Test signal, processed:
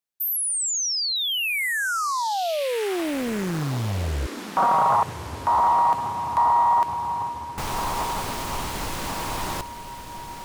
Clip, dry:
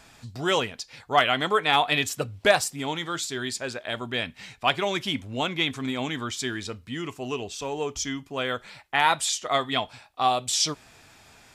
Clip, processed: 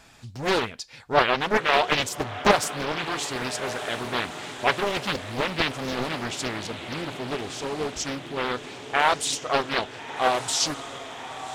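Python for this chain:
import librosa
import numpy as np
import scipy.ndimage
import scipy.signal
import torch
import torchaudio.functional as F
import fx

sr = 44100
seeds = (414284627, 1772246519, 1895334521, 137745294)

p1 = x + fx.echo_diffused(x, sr, ms=1290, feedback_pct=61, wet_db=-11.0, dry=0)
y = fx.doppler_dist(p1, sr, depth_ms=0.99)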